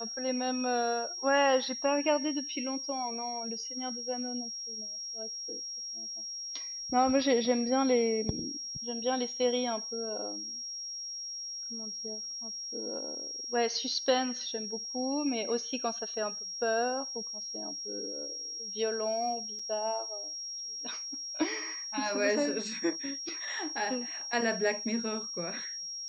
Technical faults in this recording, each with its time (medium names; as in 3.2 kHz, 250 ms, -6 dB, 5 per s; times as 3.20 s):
whine 5.6 kHz -37 dBFS
19.59 s: dropout 4.3 ms